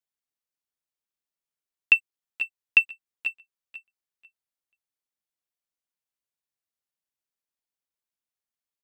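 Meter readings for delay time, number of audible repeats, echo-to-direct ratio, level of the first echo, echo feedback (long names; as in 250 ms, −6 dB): 493 ms, 2, −12.5 dB, −12.5 dB, 21%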